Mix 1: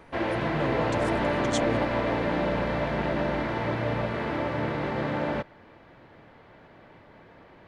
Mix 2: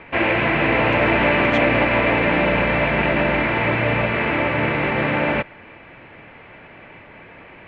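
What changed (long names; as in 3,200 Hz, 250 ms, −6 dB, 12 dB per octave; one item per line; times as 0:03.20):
background +7.0 dB
master: add low-pass with resonance 2,500 Hz, resonance Q 4.3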